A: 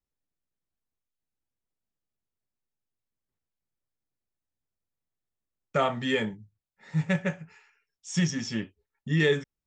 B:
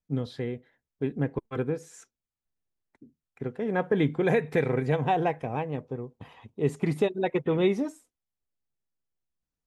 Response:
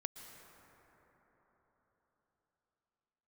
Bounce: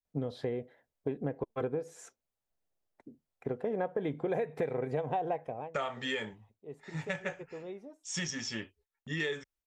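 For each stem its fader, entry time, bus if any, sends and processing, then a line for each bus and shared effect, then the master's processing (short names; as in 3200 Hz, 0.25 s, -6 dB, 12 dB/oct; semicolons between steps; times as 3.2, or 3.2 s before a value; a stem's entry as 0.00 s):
-1.0 dB, 0.00 s, no send, gate -57 dBFS, range -7 dB; bell 170 Hz -11.5 dB 1.7 oct
-2.0 dB, 0.05 s, no send, bell 620 Hz +11 dB 1.3 oct; auto duck -23 dB, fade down 0.30 s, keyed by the first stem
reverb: off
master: compressor 5:1, threshold -31 dBFS, peak gain reduction 15.5 dB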